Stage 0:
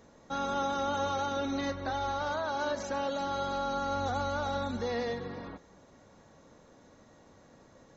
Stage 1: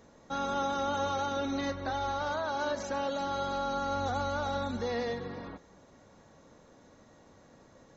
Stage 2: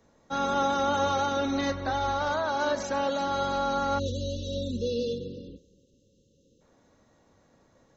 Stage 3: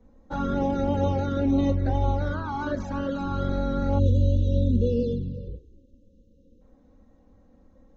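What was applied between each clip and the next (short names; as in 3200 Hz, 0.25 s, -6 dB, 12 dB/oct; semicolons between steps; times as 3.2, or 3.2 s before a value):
nothing audible
spectral delete 3.99–6.61, 580–2600 Hz; three-band expander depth 40%; gain +5 dB
tilt -4 dB/oct; envelope flanger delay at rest 4.1 ms, full sweep at -17.5 dBFS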